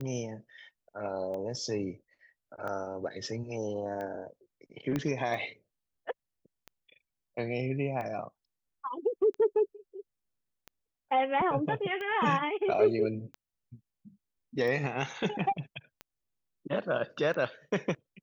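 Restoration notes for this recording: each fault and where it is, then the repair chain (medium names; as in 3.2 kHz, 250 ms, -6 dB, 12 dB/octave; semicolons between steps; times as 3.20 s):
tick 45 rpm -27 dBFS
4.96 s: pop -18 dBFS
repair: de-click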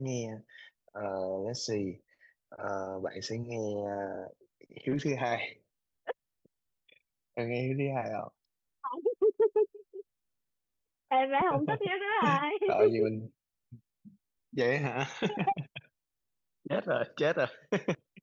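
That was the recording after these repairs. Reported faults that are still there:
4.96 s: pop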